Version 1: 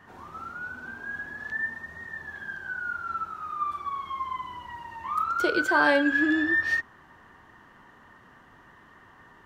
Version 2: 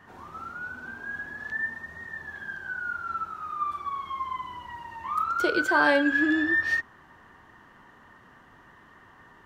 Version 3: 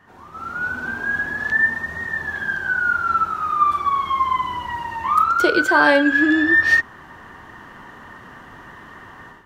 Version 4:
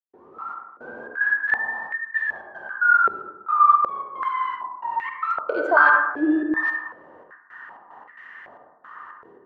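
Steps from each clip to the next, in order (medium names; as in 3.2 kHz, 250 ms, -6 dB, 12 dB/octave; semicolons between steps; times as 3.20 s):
no audible change
level rider gain up to 13 dB
trance gate ".xxx..xx.x" 112 bpm -60 dB; on a send at -2.5 dB: reverberation RT60 1.1 s, pre-delay 43 ms; on the sum: step-sequenced band-pass 2.6 Hz 420–2000 Hz; trim +5 dB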